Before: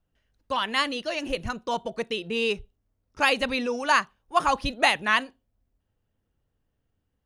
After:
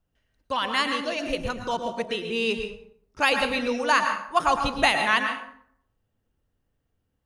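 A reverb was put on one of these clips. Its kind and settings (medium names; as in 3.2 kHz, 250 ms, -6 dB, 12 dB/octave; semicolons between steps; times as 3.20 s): plate-style reverb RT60 0.64 s, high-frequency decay 0.65×, pre-delay 95 ms, DRR 5 dB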